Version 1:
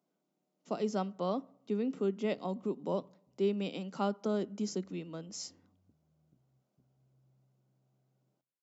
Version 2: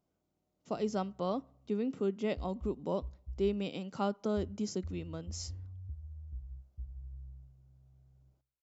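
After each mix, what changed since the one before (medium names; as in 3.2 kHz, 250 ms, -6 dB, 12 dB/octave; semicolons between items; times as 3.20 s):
speech: send -6.5 dB; master: remove steep high-pass 160 Hz 36 dB/octave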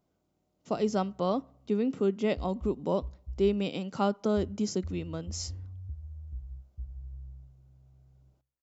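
speech +5.5 dB; background +3.5 dB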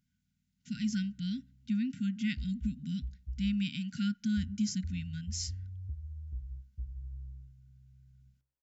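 speech: add brick-wall FIR band-stop 260–1400 Hz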